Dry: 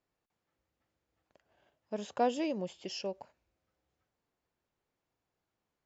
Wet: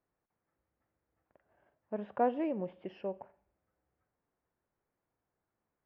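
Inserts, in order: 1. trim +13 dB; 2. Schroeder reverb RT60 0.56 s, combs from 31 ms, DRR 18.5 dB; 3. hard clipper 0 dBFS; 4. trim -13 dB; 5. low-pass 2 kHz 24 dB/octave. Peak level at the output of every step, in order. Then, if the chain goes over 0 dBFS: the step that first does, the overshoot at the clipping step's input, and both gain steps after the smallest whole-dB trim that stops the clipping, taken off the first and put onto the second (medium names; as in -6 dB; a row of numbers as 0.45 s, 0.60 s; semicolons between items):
-4.5 dBFS, -4.5 dBFS, -4.5 dBFS, -17.5 dBFS, -17.5 dBFS; nothing clips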